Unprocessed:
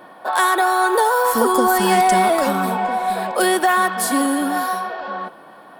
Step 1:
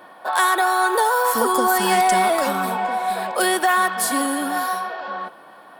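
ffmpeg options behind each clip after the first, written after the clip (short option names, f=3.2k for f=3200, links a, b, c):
-af "lowshelf=f=480:g=-7"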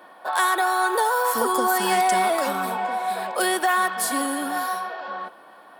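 -af "highpass=190,volume=-3dB"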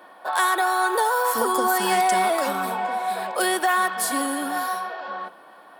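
-af "bandreject=f=60:t=h:w=6,bandreject=f=120:t=h:w=6,bandreject=f=180:t=h:w=6,bandreject=f=240:t=h:w=6"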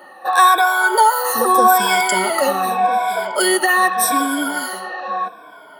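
-af "afftfilt=real='re*pow(10,20/40*sin(2*PI*(1.7*log(max(b,1)*sr/1024/100)/log(2)-(-0.83)*(pts-256)/sr)))':imag='im*pow(10,20/40*sin(2*PI*(1.7*log(max(b,1)*sr/1024/100)/log(2)-(-0.83)*(pts-256)/sr)))':win_size=1024:overlap=0.75,volume=2.5dB"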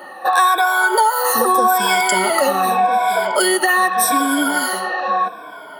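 -af "acompressor=threshold=-20dB:ratio=3,volume=6dB"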